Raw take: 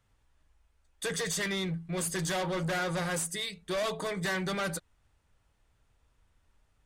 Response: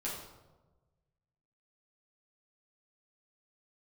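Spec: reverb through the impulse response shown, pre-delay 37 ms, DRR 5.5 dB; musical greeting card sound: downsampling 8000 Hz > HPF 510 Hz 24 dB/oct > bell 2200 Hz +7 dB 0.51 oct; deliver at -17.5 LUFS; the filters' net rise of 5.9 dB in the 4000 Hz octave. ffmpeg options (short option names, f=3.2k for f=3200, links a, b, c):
-filter_complex "[0:a]equalizer=f=4k:t=o:g=6,asplit=2[a][b];[1:a]atrim=start_sample=2205,adelay=37[c];[b][c]afir=irnorm=-1:irlink=0,volume=-8dB[d];[a][d]amix=inputs=2:normalize=0,aresample=8000,aresample=44100,highpass=f=510:w=0.5412,highpass=f=510:w=1.3066,equalizer=f=2.2k:t=o:w=0.51:g=7,volume=13.5dB"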